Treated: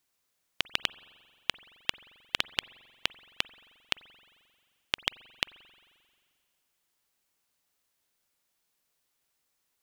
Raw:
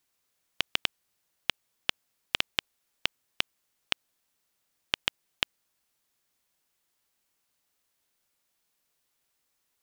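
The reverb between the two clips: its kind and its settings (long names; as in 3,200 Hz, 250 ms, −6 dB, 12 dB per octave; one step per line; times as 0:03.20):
spring reverb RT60 2 s, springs 44 ms, chirp 45 ms, DRR 18.5 dB
level −1 dB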